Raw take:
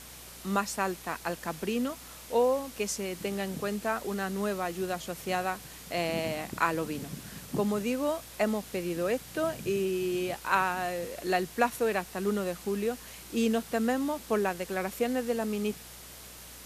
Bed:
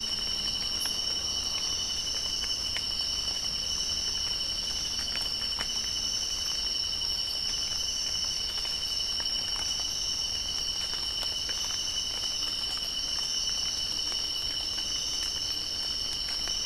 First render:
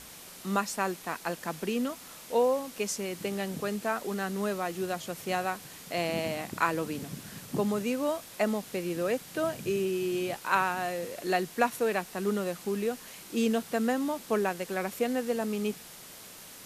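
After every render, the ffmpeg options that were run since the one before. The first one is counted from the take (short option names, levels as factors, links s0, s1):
-af "bandreject=f=60:t=h:w=4,bandreject=f=120:t=h:w=4"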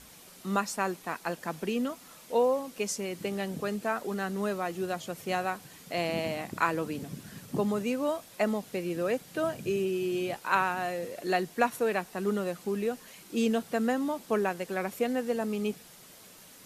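-af "afftdn=nr=6:nf=-48"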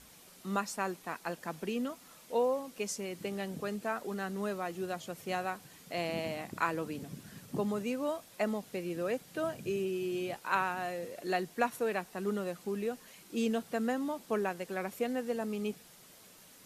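-af "volume=0.596"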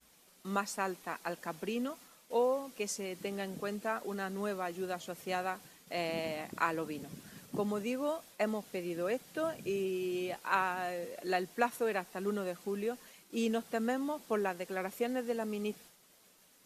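-af "agate=range=0.0224:threshold=0.00316:ratio=3:detection=peak,equalizer=f=110:w=1.2:g=-6.5"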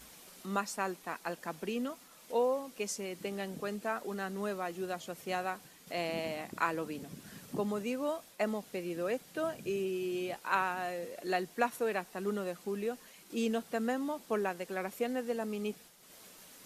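-af "acompressor=mode=upward:threshold=0.00631:ratio=2.5"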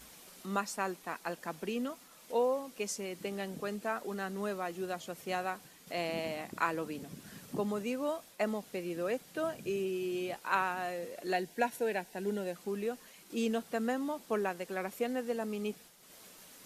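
-filter_complex "[0:a]asettb=1/sr,asplit=3[s0][s1][s2];[s0]atrim=end=11.334[s3];[s1]atrim=start=11.33:end=12.56,asetpts=PTS-STARTPTS,afade=t=in:d=0.004:c=qsin,afade=t=out:st=1.226:d=0.004:c=qsin,asuperstop=centerf=1200:order=4:qfactor=2.9[s4];[s2]atrim=start=12.556[s5];[s3][s4]acrossfade=d=0.004:c1=hsin:c2=qsin[s6];[s6][s5]acrossfade=d=0.004:c1=qsin:c2=hsin"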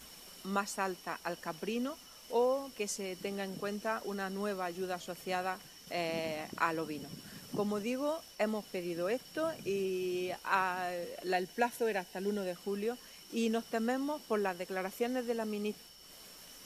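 -filter_complex "[1:a]volume=0.0501[s0];[0:a][s0]amix=inputs=2:normalize=0"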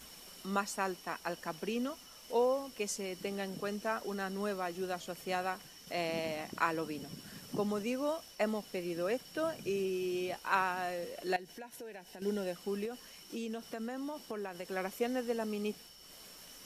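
-filter_complex "[0:a]asettb=1/sr,asplit=3[s0][s1][s2];[s0]atrim=end=11.364[s3];[s1]atrim=start=11.36:end=12.22,asetpts=PTS-STARTPTS,afade=t=in:d=0.004:c=qsin,afade=t=out:st=0.856:d=0.004:c=qsin,acompressor=threshold=0.00562:ratio=5:attack=3.2:release=140:knee=1:detection=peak[s4];[s2]atrim=start=12.216[s5];[s3][s4]acrossfade=d=0.004:c1=hsin:c2=qsin[s6];[s6][s5]acrossfade=d=0.004:c1=qsin:c2=hsin,asettb=1/sr,asplit=3[s7][s8][s9];[s7]atrim=end=12.854[s10];[s8]atrim=start=12.85:end=14.72,asetpts=PTS-STARTPTS,afade=t=in:d=0.004:c=qsin,afade=t=out:st=1.866:d=0.004:c=qsin,acompressor=threshold=0.0158:ratio=6:attack=3.2:release=140:knee=1:detection=peak[s11];[s9]atrim=start=14.716[s12];[s10][s11]acrossfade=d=0.004:c1=hsin:c2=qsin[s13];[s13][s12]acrossfade=d=0.004:c1=qsin:c2=hsin"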